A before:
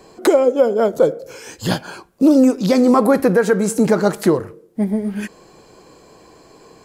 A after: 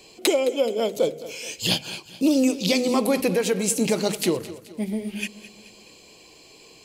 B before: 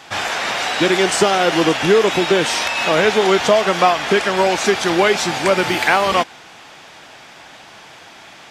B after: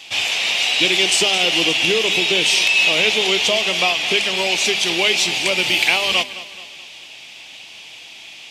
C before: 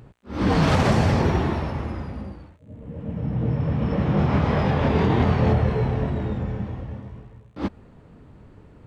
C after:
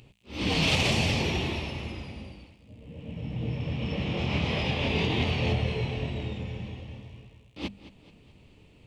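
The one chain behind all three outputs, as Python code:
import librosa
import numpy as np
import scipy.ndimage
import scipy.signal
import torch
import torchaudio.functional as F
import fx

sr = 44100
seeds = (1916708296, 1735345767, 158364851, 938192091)

p1 = fx.high_shelf_res(x, sr, hz=2000.0, db=9.5, q=3.0)
p2 = fx.hum_notches(p1, sr, base_hz=50, count=5)
p3 = p2 + fx.echo_feedback(p2, sr, ms=214, feedback_pct=48, wet_db=-16, dry=0)
y = p3 * 10.0 ** (-7.5 / 20.0)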